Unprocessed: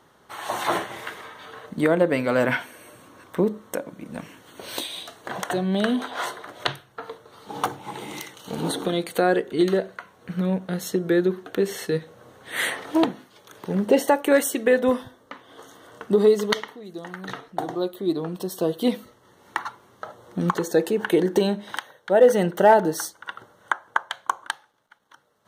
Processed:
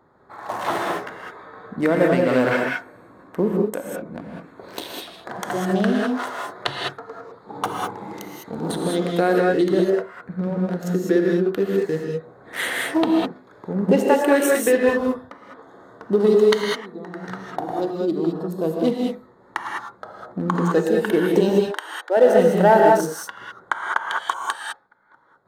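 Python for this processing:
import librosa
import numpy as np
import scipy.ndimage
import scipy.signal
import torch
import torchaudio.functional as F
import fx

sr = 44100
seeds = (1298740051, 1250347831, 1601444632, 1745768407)

y = fx.wiener(x, sr, points=15)
y = fx.brickwall_highpass(y, sr, low_hz=280.0, at=(21.49, 22.17))
y = fx.rev_gated(y, sr, seeds[0], gate_ms=230, shape='rising', drr_db=-1.0)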